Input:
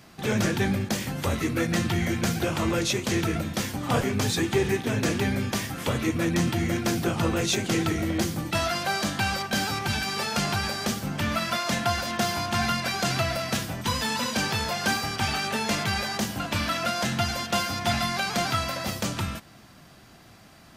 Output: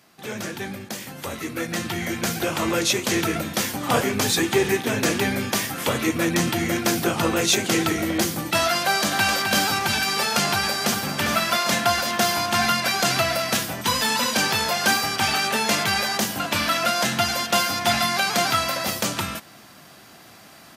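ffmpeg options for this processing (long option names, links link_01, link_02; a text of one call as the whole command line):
ffmpeg -i in.wav -filter_complex "[0:a]asplit=2[link_01][link_02];[link_02]afade=type=in:start_time=8.84:duration=0.01,afade=type=out:start_time=9.34:duration=0.01,aecho=0:1:260|520|780|1040|1300|1560|1820:0.501187|0.275653|0.151609|0.083385|0.0458618|0.025224|0.0138732[link_03];[link_01][link_03]amix=inputs=2:normalize=0,asplit=2[link_04][link_05];[link_05]afade=type=in:start_time=10.44:duration=0.01,afade=type=out:start_time=11.01:duration=0.01,aecho=0:1:400|800|1200|1600|2000|2400|2800:0.398107|0.218959|0.120427|0.0662351|0.0364293|0.0200361|0.0110199[link_06];[link_04][link_06]amix=inputs=2:normalize=0,highpass=frequency=300:poles=1,equalizer=frequency=13000:width=0.81:gain=5,dynaudnorm=framelen=460:gausssize=9:maxgain=11.5dB,volume=-4dB" out.wav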